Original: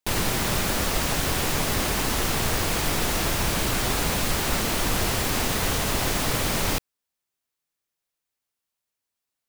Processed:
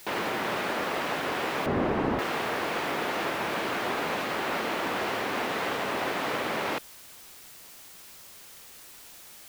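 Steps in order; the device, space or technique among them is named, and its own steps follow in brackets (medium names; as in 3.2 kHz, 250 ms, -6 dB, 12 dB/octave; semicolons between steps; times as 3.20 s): wax cylinder (band-pass 320–2400 Hz; wow and flutter; white noise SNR 17 dB); 1.66–2.19 s: tilt EQ -4.5 dB/octave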